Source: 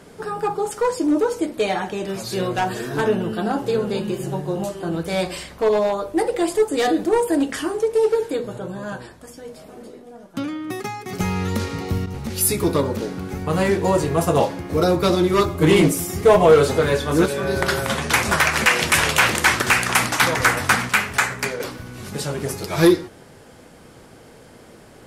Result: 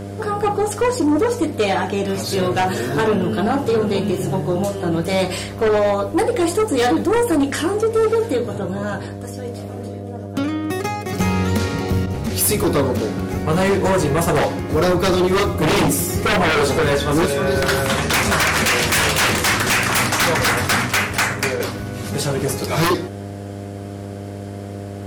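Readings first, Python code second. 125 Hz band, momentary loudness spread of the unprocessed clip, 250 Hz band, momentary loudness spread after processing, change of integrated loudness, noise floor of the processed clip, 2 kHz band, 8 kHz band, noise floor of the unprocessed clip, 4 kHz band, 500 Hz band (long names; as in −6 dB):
+4.0 dB, 13 LU, +2.0 dB, 14 LU, +1.5 dB, −30 dBFS, +1.0 dB, +2.5 dB, −46 dBFS, +3.0 dB, +1.0 dB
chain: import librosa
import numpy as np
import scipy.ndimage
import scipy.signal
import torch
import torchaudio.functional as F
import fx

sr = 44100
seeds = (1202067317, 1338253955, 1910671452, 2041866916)

y = fx.fold_sine(x, sr, drive_db=8, ceiling_db=-6.0)
y = fx.dmg_buzz(y, sr, base_hz=100.0, harmonics=7, level_db=-24.0, tilt_db=-4, odd_only=False)
y = y * 10.0 ** (-6.5 / 20.0)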